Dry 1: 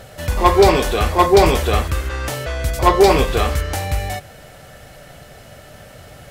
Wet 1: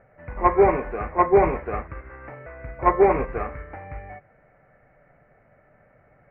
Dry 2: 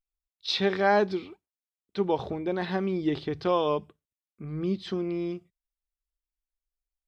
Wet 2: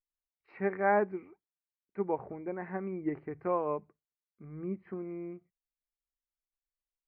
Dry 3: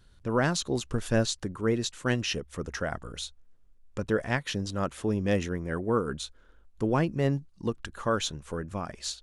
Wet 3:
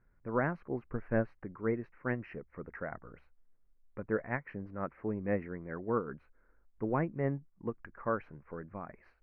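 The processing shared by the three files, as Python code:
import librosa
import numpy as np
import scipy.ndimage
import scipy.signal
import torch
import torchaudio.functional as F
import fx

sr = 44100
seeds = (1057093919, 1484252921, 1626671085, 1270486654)

y = scipy.signal.sosfilt(scipy.signal.ellip(4, 1.0, 40, 2200.0, 'lowpass', fs=sr, output='sos'), x)
y = fx.peak_eq(y, sr, hz=74.0, db=-9.0, octaves=0.71)
y = fx.upward_expand(y, sr, threshold_db=-31.0, expansion=1.5)
y = y * 10.0 ** (-3.5 / 20.0)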